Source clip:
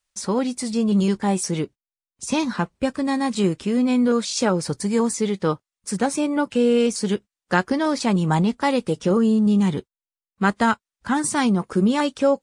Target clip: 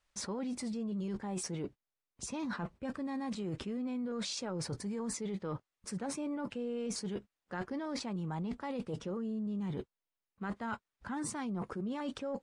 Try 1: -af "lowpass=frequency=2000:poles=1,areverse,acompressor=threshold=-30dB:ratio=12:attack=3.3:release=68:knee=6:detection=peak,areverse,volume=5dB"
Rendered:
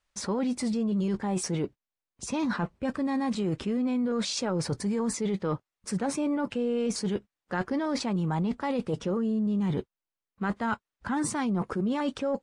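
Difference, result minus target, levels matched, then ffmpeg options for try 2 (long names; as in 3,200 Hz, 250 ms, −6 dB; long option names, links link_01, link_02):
downward compressor: peak gain reduction −9.5 dB
-af "lowpass=frequency=2000:poles=1,areverse,acompressor=threshold=-40.5dB:ratio=12:attack=3.3:release=68:knee=6:detection=peak,areverse,volume=5dB"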